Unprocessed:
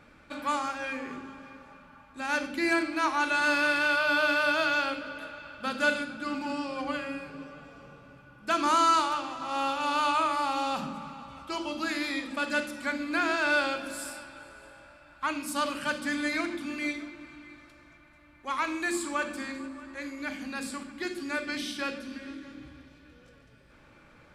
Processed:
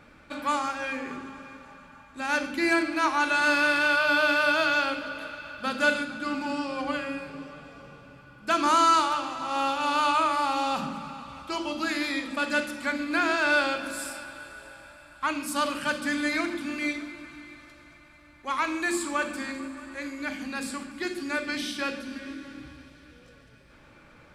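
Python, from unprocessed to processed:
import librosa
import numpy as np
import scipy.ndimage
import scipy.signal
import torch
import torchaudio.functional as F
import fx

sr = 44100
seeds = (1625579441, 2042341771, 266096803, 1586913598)

y = fx.echo_thinned(x, sr, ms=144, feedback_pct=84, hz=380.0, wet_db=-21.0)
y = y * librosa.db_to_amplitude(2.5)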